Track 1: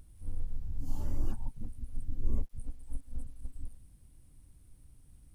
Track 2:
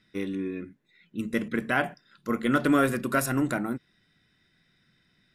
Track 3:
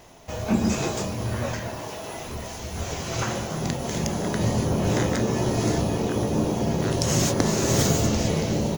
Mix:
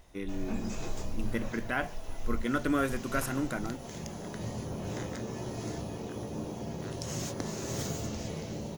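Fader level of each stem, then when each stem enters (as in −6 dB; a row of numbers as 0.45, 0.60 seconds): −5.0, −6.5, −14.0 decibels; 0.00, 0.00, 0.00 seconds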